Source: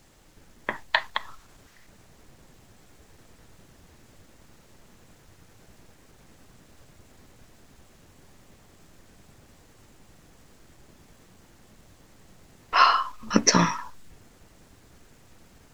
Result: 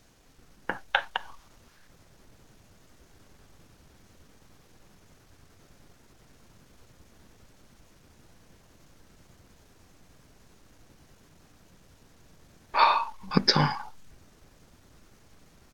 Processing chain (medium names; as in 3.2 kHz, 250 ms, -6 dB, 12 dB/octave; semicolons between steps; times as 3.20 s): pitch shift -2.5 st; trim -2.5 dB